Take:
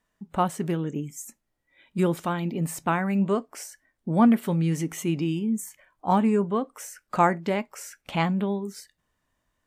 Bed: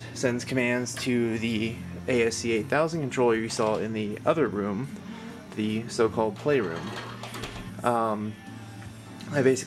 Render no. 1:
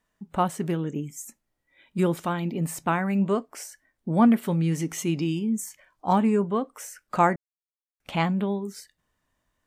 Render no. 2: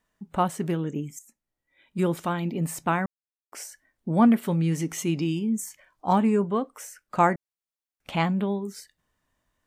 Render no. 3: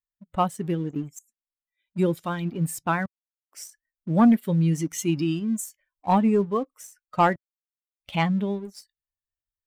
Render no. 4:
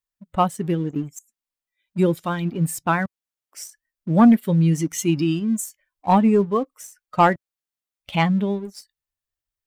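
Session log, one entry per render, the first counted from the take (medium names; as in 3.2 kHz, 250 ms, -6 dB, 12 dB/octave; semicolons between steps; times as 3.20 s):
4.82–6.13 s: peaking EQ 5.2 kHz +6 dB 0.97 oct; 7.36–8.00 s: mute
1.19–2.22 s: fade in, from -15 dB; 3.06–3.52 s: mute; 6.70–7.18 s: fade out, to -6 dB
expander on every frequency bin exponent 1.5; waveshaping leveller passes 1
trim +4 dB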